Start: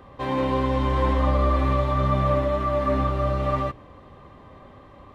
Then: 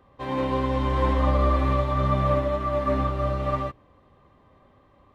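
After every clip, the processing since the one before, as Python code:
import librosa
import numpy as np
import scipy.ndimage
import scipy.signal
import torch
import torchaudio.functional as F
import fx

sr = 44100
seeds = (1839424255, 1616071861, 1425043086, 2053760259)

y = fx.upward_expand(x, sr, threshold_db=-40.0, expansion=1.5)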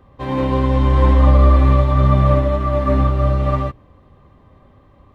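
y = fx.low_shelf(x, sr, hz=220.0, db=9.0)
y = y * 10.0 ** (4.0 / 20.0)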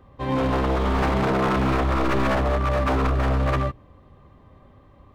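y = 10.0 ** (-14.0 / 20.0) * (np.abs((x / 10.0 ** (-14.0 / 20.0) + 3.0) % 4.0 - 2.0) - 1.0)
y = y * 10.0 ** (-2.0 / 20.0)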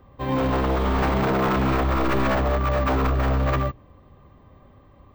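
y = np.repeat(scipy.signal.resample_poly(x, 1, 2), 2)[:len(x)]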